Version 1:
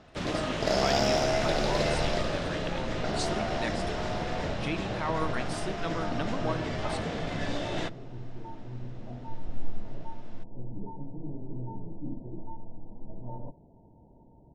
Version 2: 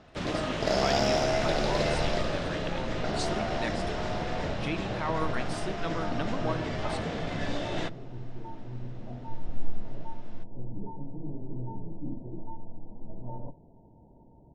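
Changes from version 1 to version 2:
second sound: send on; master: add treble shelf 9.3 kHz -5.5 dB

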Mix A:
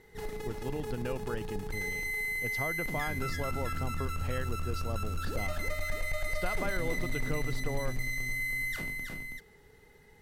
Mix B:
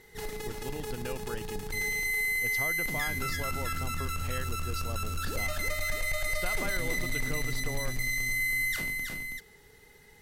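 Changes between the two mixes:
speech -3.5 dB; master: add treble shelf 2.1 kHz +9 dB

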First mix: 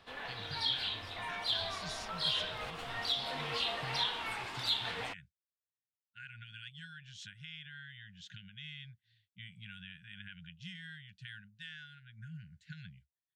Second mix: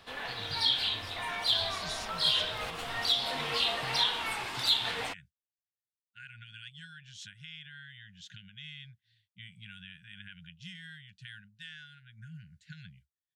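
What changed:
background +4.0 dB; master: add treble shelf 5.9 kHz +8 dB

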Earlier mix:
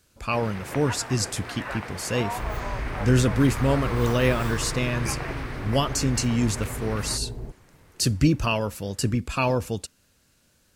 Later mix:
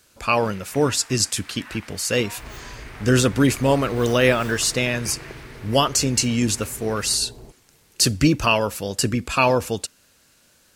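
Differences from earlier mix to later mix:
speech +7.5 dB; first sound: add amplifier tone stack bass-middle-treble 10-0-10; master: add bass shelf 240 Hz -10 dB

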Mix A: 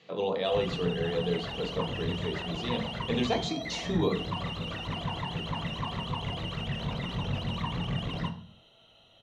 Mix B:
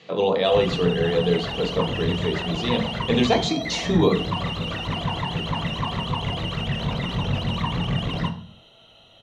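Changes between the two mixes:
speech +9.0 dB; background +7.5 dB

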